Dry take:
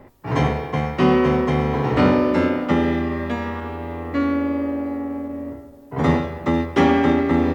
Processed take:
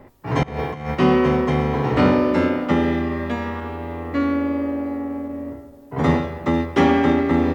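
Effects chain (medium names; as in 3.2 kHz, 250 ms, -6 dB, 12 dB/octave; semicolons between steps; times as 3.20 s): 0.43–0.95 s: compressor with a negative ratio -26 dBFS, ratio -0.5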